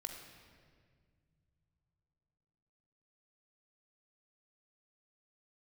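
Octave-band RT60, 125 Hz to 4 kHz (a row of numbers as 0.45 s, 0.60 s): 4.3 s, 3.6 s, 2.2 s, 1.7 s, 1.7 s, 1.4 s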